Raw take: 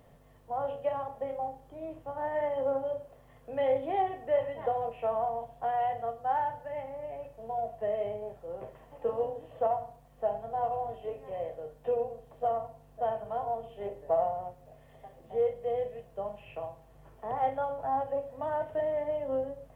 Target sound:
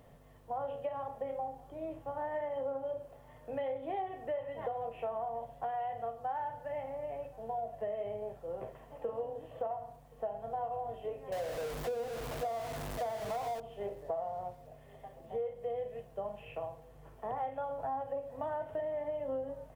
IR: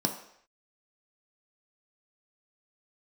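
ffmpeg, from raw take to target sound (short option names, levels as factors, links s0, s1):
-filter_complex "[0:a]asettb=1/sr,asplit=3[s0][s1][s2];[s0]atrim=end=11.324[s3];[s1]atrim=start=11.32:end=13.6,asetpts=PTS-STARTPTS,afade=t=in:d=0.004:c=qsin,afade=t=out:st=2.276:d=0.004:c=qsin,aeval=exprs='val(0)+0.5*0.0178*sgn(val(0))':c=same[s4];[s2]atrim=start=13.596[s5];[s3][s4]acrossfade=d=0.004:c1=hsin:c2=qsin[s6];[s6][s5]acrossfade=d=0.004:c1=qsin:c2=hsin,acompressor=threshold=0.02:ratio=6,aecho=1:1:1073:0.0631"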